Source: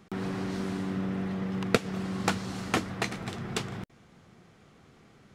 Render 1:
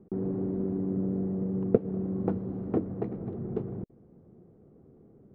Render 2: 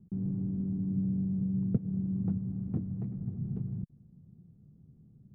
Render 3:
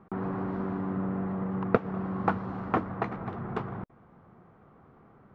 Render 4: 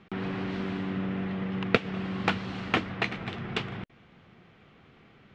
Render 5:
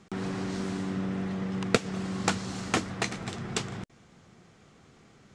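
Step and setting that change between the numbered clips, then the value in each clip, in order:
resonant low-pass, frequency: 420 Hz, 160 Hz, 1.1 kHz, 2.9 kHz, 7.8 kHz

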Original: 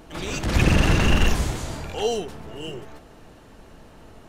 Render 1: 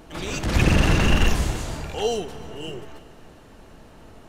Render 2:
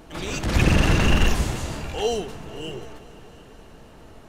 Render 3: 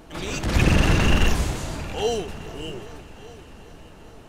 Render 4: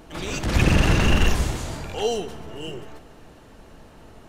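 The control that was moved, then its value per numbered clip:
multi-head delay, time: 111 ms, 243 ms, 399 ms, 64 ms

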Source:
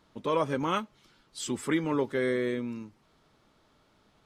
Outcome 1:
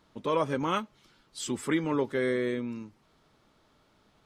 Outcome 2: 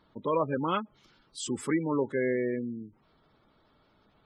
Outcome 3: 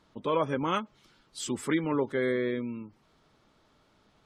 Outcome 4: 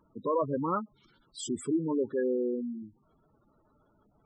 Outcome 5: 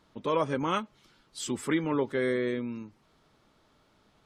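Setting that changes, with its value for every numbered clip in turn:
spectral gate, under each frame's peak: -60 dB, -20 dB, -35 dB, -10 dB, -45 dB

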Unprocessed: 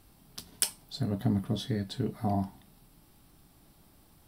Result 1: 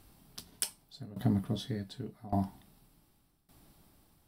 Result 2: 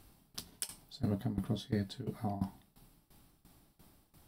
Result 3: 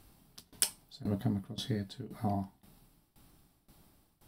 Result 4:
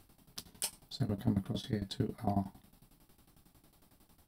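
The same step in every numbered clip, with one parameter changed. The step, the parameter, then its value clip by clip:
tremolo, rate: 0.86 Hz, 2.9 Hz, 1.9 Hz, 11 Hz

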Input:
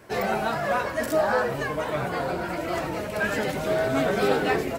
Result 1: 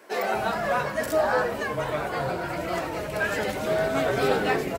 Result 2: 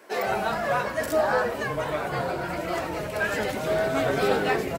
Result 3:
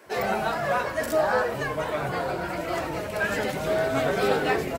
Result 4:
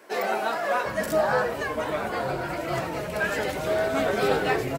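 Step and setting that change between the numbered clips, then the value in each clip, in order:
bands offset in time, time: 240 ms, 160 ms, 60 ms, 750 ms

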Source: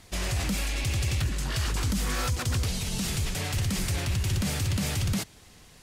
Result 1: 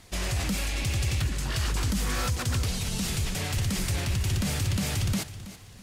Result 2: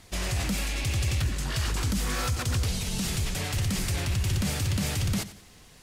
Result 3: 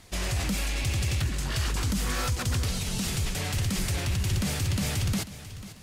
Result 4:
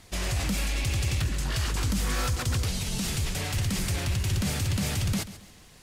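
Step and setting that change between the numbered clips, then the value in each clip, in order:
bit-crushed delay, time: 326 ms, 91 ms, 493 ms, 137 ms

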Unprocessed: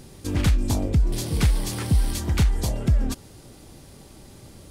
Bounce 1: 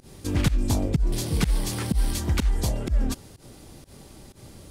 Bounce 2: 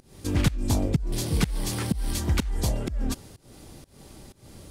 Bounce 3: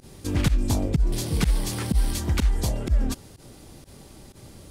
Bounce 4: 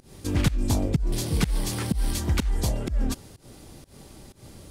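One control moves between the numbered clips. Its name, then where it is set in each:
volume shaper, release: 108 ms, 289 ms, 69 ms, 179 ms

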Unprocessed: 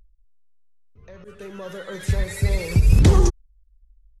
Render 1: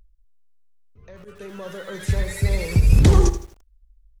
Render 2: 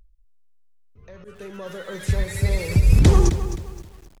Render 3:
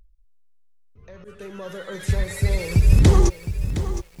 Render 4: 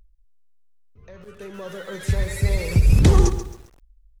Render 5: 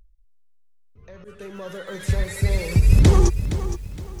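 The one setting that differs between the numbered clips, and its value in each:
bit-crushed delay, time: 81 ms, 262 ms, 714 ms, 135 ms, 466 ms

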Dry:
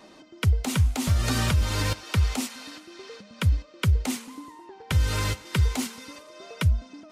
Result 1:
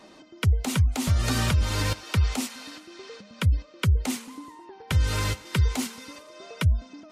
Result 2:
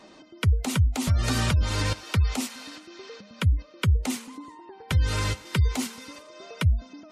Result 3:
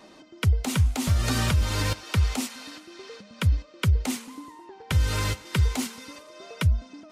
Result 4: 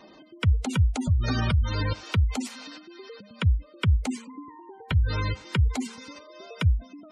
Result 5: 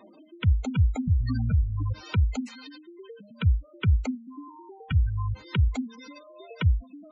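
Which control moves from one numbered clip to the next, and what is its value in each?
spectral gate, under each frame's peak: -45 dB, -35 dB, -60 dB, -20 dB, -10 dB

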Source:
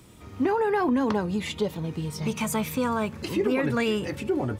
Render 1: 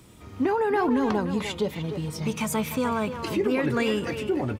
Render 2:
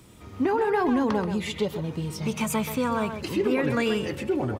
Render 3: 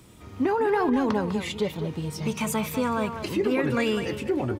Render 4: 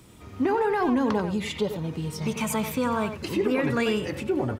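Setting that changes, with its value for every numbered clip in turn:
speakerphone echo, time: 300 ms, 130 ms, 200 ms, 90 ms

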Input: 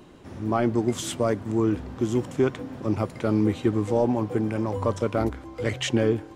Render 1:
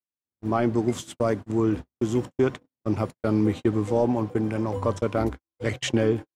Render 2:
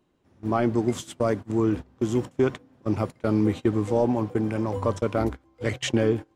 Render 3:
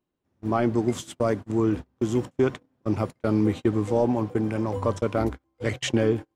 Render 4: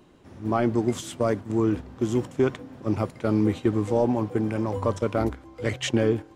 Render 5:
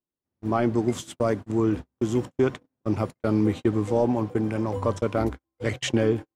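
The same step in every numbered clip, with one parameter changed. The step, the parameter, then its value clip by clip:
gate, range: -60 dB, -20 dB, -33 dB, -6 dB, -46 dB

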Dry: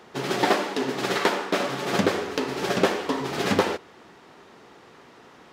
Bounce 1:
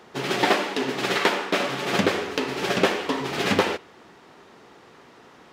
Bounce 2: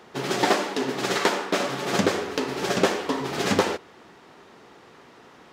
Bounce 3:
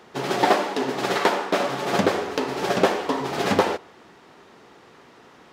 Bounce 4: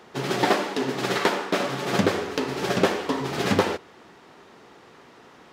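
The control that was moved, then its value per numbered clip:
dynamic bell, frequency: 2.6 kHz, 6.9 kHz, 750 Hz, 110 Hz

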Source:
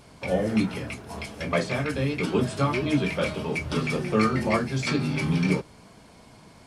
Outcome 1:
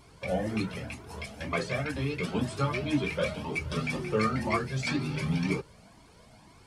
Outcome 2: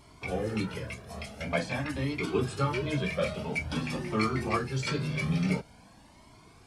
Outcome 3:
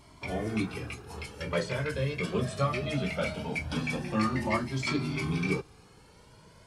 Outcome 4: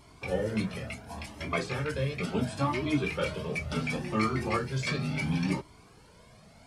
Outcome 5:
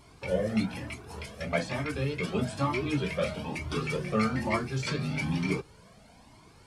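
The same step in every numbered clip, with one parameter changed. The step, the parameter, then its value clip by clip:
Shepard-style flanger, rate: 2 Hz, 0.48 Hz, 0.21 Hz, 0.71 Hz, 1.1 Hz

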